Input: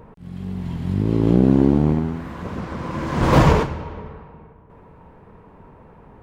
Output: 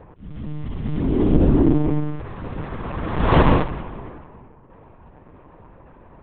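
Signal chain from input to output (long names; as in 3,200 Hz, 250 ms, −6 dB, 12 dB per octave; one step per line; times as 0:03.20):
mains-hum notches 50/100/150 Hz
one-pitch LPC vocoder at 8 kHz 150 Hz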